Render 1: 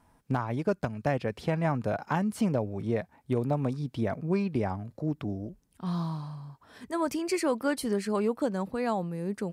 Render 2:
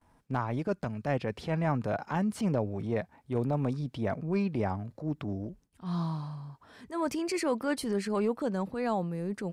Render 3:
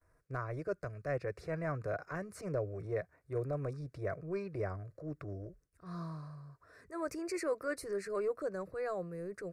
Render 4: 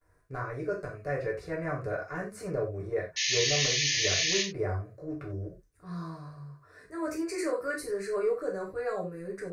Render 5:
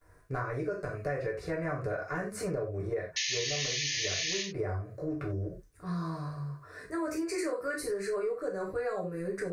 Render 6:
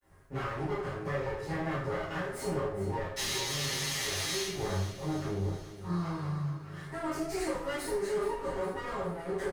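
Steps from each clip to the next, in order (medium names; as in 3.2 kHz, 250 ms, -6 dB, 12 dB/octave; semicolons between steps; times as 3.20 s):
gate with hold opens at -54 dBFS; treble shelf 11 kHz -9.5 dB; transient shaper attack -7 dB, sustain +1 dB
treble shelf 8.1 kHz -4 dB; static phaser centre 860 Hz, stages 6; trim -3 dB
painted sound noise, 3.16–4.42 s, 1.7–6.8 kHz -33 dBFS; gated-style reverb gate 120 ms falling, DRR -3.5 dB
compression 5:1, threshold -38 dBFS, peak gain reduction 14 dB; trim +7 dB
comb filter that takes the minimum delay 7.4 ms; on a send: feedback delay 414 ms, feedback 54%, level -13 dB; on the sum: plate-style reverb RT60 0.5 s, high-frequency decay 0.8×, DRR -8.5 dB; trim -8.5 dB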